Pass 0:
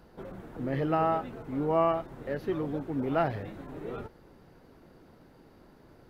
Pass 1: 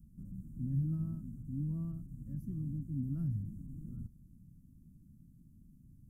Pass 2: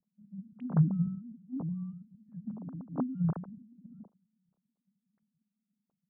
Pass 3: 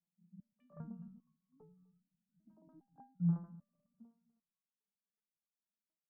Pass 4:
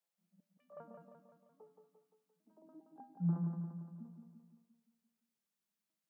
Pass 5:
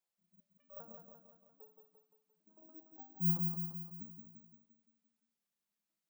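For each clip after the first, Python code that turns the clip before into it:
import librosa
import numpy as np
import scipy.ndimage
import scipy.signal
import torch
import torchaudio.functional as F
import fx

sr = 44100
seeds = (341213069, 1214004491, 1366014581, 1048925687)

y1 = scipy.signal.sosfilt(scipy.signal.cheby2(4, 40, [400.0, 4300.0], 'bandstop', fs=sr, output='sos'), x)
y1 = fx.high_shelf(y1, sr, hz=3600.0, db=-7.0)
y1 = F.gain(torch.from_numpy(y1), 2.0).numpy()
y2 = fx.sine_speech(y1, sr)
y2 = fx.band_widen(y2, sr, depth_pct=100)
y3 = fx.echo_feedback(y2, sr, ms=251, feedback_pct=56, wet_db=-23.0)
y3 = fx.resonator_held(y3, sr, hz=2.5, low_hz=170.0, high_hz=1500.0)
y3 = F.gain(torch.from_numpy(y3), 1.0).numpy()
y4 = fx.filter_sweep_highpass(y3, sr, from_hz=530.0, to_hz=150.0, start_s=2.14, end_s=4.22, q=1.7)
y4 = fx.echo_feedback(y4, sr, ms=173, feedback_pct=55, wet_db=-5.5)
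y4 = F.gain(torch.from_numpy(y4), 3.0).numpy()
y5 = (np.kron(scipy.signal.resample_poly(y4, 1, 2), np.eye(2)[0]) * 2)[:len(y4)]
y5 = F.gain(torch.from_numpy(y5), -1.5).numpy()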